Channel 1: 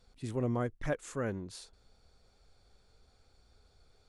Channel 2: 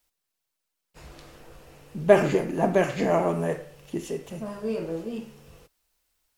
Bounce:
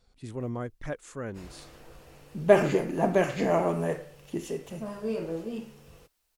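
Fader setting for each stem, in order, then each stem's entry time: −1.5, −2.0 decibels; 0.00, 0.40 seconds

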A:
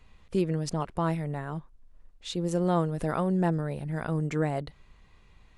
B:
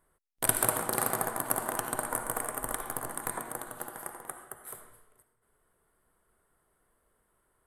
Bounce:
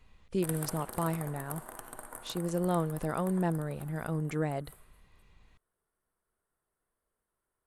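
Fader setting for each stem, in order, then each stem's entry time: −4.0, −13.0 decibels; 0.00, 0.00 seconds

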